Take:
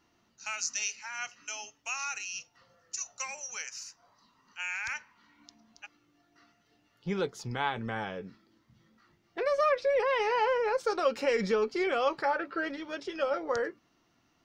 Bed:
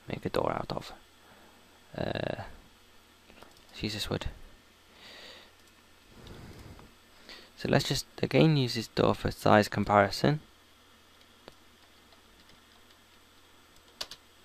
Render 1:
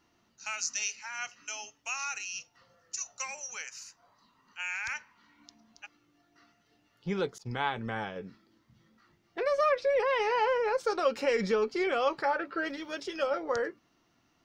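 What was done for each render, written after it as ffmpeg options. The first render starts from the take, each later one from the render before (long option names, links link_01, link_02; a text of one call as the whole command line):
ffmpeg -i in.wav -filter_complex "[0:a]asettb=1/sr,asplit=3[link_01][link_02][link_03];[link_01]atrim=end=3.534[link_04];[link_02]atrim=start=3.53:end=4.66,asetpts=PTS-STARTPTS,afade=type=in:duration=0.004:curve=qsin,afade=type=out:start_time=1.126:duration=0.004:curve=qsin,equalizer=frequency=5500:width=3.3:gain=-5.5[link_05];[link_03]atrim=start=4.656[link_06];[link_04][link_05]acrossfade=duration=0.004:curve1=hsin:curve2=qsin[link_07];[link_07][link_06]acrossfade=duration=0.004:curve1=qsin:curve2=hsin,asettb=1/sr,asplit=3[link_08][link_09][link_10];[link_08]atrim=end=7.384[link_11];[link_09]atrim=start=7.38:end=8.16,asetpts=PTS-STARTPTS,afade=type=in:duration=0.004:curve=qsin,afade=type=out:start_time=0.776:duration=0.004:curve=qsin,agate=range=-33dB:threshold=-37dB:ratio=3:release=100:detection=peak[link_12];[link_10]atrim=start=8.156[link_13];[link_11][link_12]acrossfade=duration=0.004:curve1=hsin:curve2=qsin[link_14];[link_14][link_13]acrossfade=duration=0.004:curve1=qsin:curve2=hsin,asettb=1/sr,asplit=3[link_15][link_16][link_17];[link_15]atrim=end=12.654[link_18];[link_16]atrim=start=12.65:end=13.27,asetpts=PTS-STARTPTS,afade=type=in:duration=0.004:curve=qsin,afade=type=out:start_time=0.616:duration=0.004:curve=qsin,aemphasis=mode=production:type=cd[link_19];[link_17]atrim=start=13.266[link_20];[link_18][link_19]acrossfade=duration=0.004:curve1=hsin:curve2=qsin[link_21];[link_21][link_20]acrossfade=duration=0.004:curve1=qsin:curve2=hsin" out.wav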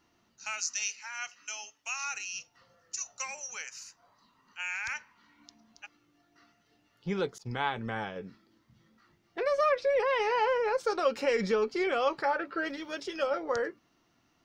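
ffmpeg -i in.wav -filter_complex "[0:a]asettb=1/sr,asplit=3[link_01][link_02][link_03];[link_01]atrim=end=0.604[link_04];[link_02]atrim=start=0.6:end=2.04,asetpts=PTS-STARTPTS,afade=type=in:duration=0.004:curve=qsin,afade=type=out:start_time=1.436:duration=0.004:curve=qsin,lowshelf=frequency=430:gain=-11.5[link_05];[link_03]atrim=start=2.036[link_06];[link_04][link_05]acrossfade=duration=0.004:curve1=hsin:curve2=qsin[link_07];[link_07][link_06]acrossfade=duration=0.004:curve1=qsin:curve2=hsin" out.wav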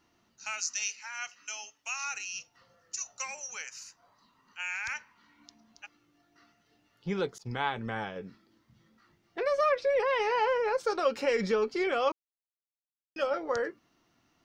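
ffmpeg -i in.wav -filter_complex "[0:a]asplit=3[link_01][link_02][link_03];[link_01]atrim=end=12.12,asetpts=PTS-STARTPTS,afade=type=out:start_time=12.116:duration=0.004:curve=hsin[link_04];[link_02]atrim=start=12.12:end=13.16,asetpts=PTS-STARTPTS,volume=0[link_05];[link_03]atrim=start=13.16,asetpts=PTS-STARTPTS,afade=type=in:duration=0.004:curve=hsin[link_06];[link_04][link_05][link_06]concat=n=3:v=0:a=1" out.wav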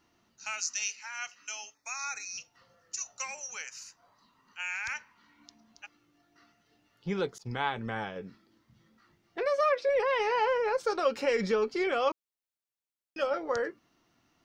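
ffmpeg -i in.wav -filter_complex "[0:a]asettb=1/sr,asplit=3[link_01][link_02][link_03];[link_01]atrim=end=1.744[link_04];[link_02]atrim=start=1.74:end=2.38,asetpts=PTS-STARTPTS,afade=type=in:duration=0.004:curve=qsin,afade=type=out:start_time=0.636:duration=0.004:curve=qsin,asuperstop=centerf=3000:order=12:qfactor=3[link_05];[link_03]atrim=start=2.376[link_06];[link_04][link_05]acrossfade=duration=0.004:curve1=hsin:curve2=qsin[link_07];[link_07][link_06]acrossfade=duration=0.004:curve1=qsin:curve2=hsin,asettb=1/sr,asplit=3[link_08][link_09][link_10];[link_08]atrim=end=9.464[link_11];[link_09]atrim=start=9.46:end=9.89,asetpts=PTS-STARTPTS,afade=type=in:duration=0.004:curve=qsin,afade=type=out:start_time=0.426:duration=0.004:curve=qsin,highpass=230[link_12];[link_10]atrim=start=9.886[link_13];[link_11][link_12]acrossfade=duration=0.004:curve1=hsin:curve2=qsin[link_14];[link_14][link_13]acrossfade=duration=0.004:curve1=qsin:curve2=hsin" out.wav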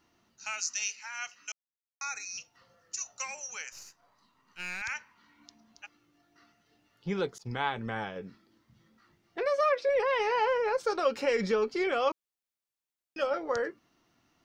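ffmpeg -i in.wav -filter_complex "[0:a]asettb=1/sr,asplit=3[link_01][link_02][link_03];[link_01]atrim=end=3.724[link_04];[link_02]atrim=start=3.72:end=4.82,asetpts=PTS-STARTPTS,afade=type=in:duration=0.004:curve=qsin,afade=type=out:start_time=1.096:duration=0.004:curve=qsin,aeval=exprs='if(lt(val(0),0),0.447*val(0),val(0))':channel_layout=same[link_05];[link_03]atrim=start=4.816[link_06];[link_04][link_05]acrossfade=duration=0.004:curve1=hsin:curve2=qsin[link_07];[link_07][link_06]acrossfade=duration=0.004:curve1=qsin:curve2=hsin,asplit=3[link_08][link_09][link_10];[link_08]atrim=end=1.52,asetpts=PTS-STARTPTS,afade=type=out:start_time=1.516:duration=0.004:curve=hsin[link_11];[link_09]atrim=start=1.52:end=2.01,asetpts=PTS-STARTPTS,volume=0[link_12];[link_10]atrim=start=2.01,asetpts=PTS-STARTPTS,afade=type=in:duration=0.004:curve=hsin[link_13];[link_11][link_12][link_13]concat=n=3:v=0:a=1" out.wav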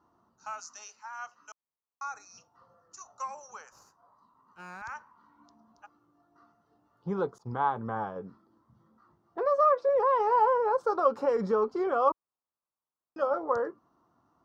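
ffmpeg -i in.wav -af "highpass=47,highshelf=frequency=1600:width_type=q:width=3:gain=-12.5" out.wav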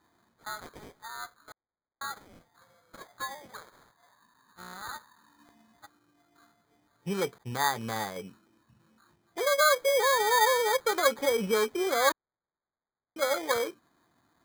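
ffmpeg -i in.wav -af "acrusher=samples=16:mix=1:aa=0.000001" out.wav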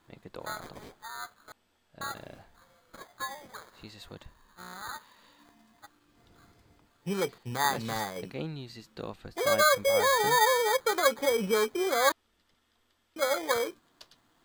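ffmpeg -i in.wav -i bed.wav -filter_complex "[1:a]volume=-14dB[link_01];[0:a][link_01]amix=inputs=2:normalize=0" out.wav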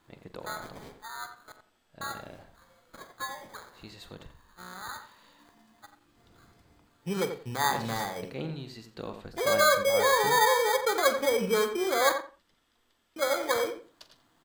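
ffmpeg -i in.wav -filter_complex "[0:a]asplit=2[link_01][link_02];[link_02]adelay=44,volume=-13.5dB[link_03];[link_01][link_03]amix=inputs=2:normalize=0,asplit=2[link_04][link_05];[link_05]adelay=87,lowpass=frequency=2000:poles=1,volume=-7.5dB,asplit=2[link_06][link_07];[link_07]adelay=87,lowpass=frequency=2000:poles=1,volume=0.21,asplit=2[link_08][link_09];[link_09]adelay=87,lowpass=frequency=2000:poles=1,volume=0.21[link_10];[link_06][link_08][link_10]amix=inputs=3:normalize=0[link_11];[link_04][link_11]amix=inputs=2:normalize=0" out.wav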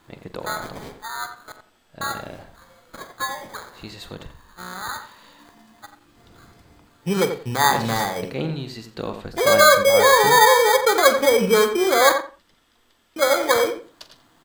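ffmpeg -i in.wav -af "volume=9.5dB,alimiter=limit=-3dB:level=0:latency=1" out.wav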